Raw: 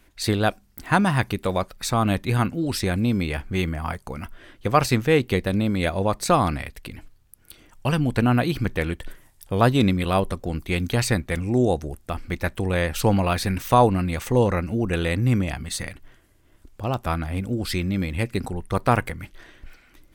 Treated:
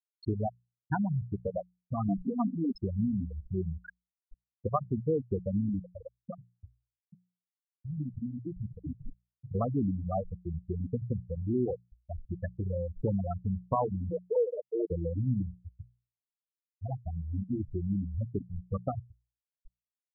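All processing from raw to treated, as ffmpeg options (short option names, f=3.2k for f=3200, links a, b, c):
-filter_complex "[0:a]asettb=1/sr,asplit=3[a][b][c];[a]atrim=end=2.084[d];[b]atrim=start=2.08:end=2.78,asetpts=PTS-STARTPTS,afade=t=in:d=0.004:c=qsin,afade=t=out:st=0.696:d=0.004:c=qsin,aeval=exprs='val(0)+0.5*0.0266*sgn(val(0))':c=same,aecho=1:1:4.3:0.81,atrim=end_sample=30870[e];[c]atrim=start=2.776[f];[d][e]acrossfade=d=0.004:c1=hsin:c2=qsin[g];[g][f]acrossfade=d=0.004:c1=qsin:c2=hsin,asettb=1/sr,asplit=3[h][i][j];[h]atrim=end=3.784[k];[i]atrim=start=3.78:end=4.18,asetpts=PTS-STARTPTS,afade=t=in:d=0.004:c=qsin,afade=t=out:st=0.396:d=0.004:c=qsin,aeval=exprs='val(0)+0.5*0.0158*sgn(val(0))':c=same,highpass=f=510:p=1,afreqshift=340[l];[j]atrim=start=4.176[m];[k][l]acrossfade=d=0.004:c1=hsin:c2=qsin[n];[n][m]acrossfade=d=0.004:c1=qsin:c2=hsin,asettb=1/sr,asplit=3[o][p][q];[o]atrim=end=5.794[r];[p]atrim=start=5.79:end=9.55,asetpts=PTS-STARTPTS,afade=t=in:d=0.004:c=qsin,afade=t=out:st=3.756:d=0.004:c=qsin,acompressor=threshold=-25dB:ratio=6:attack=3.2:release=140:knee=1:detection=peak,aecho=1:1:835:0.631,atrim=end_sample=165816[s];[q]atrim=start=9.546[t];[r][s]acrossfade=d=0.004:c1=hsin:c2=qsin[u];[u][t]acrossfade=d=0.004:c1=qsin:c2=hsin,asettb=1/sr,asplit=3[v][w][x];[v]atrim=end=14.104[y];[w]atrim=start=14.1:end=14.91,asetpts=PTS-STARTPTS,afade=t=in:d=0.004:c=qsin,afade=t=out:st=0.806:d=0.004:c=qsin,asuperpass=centerf=630:order=12:qfactor=0.79,aecho=1:1:6.5:0.99,atrim=end_sample=35721,acompressor=mode=upward:threshold=-19dB:ratio=2.5:attack=3.2:release=140:knee=2.83:detection=peak[z];[x]atrim=start=14.906[aa];[y][z]acrossfade=d=0.004:c1=hsin:c2=qsin[ab];[ab][aa]acrossfade=d=0.004:c1=qsin:c2=hsin,acompressor=threshold=-22dB:ratio=3,afftfilt=real='re*gte(hypot(re,im),0.282)':imag='im*gte(hypot(re,im),0.282)':win_size=1024:overlap=0.75,bandreject=f=60:t=h:w=6,bandreject=f=120:t=h:w=6,bandreject=f=180:t=h:w=6,volume=-3dB"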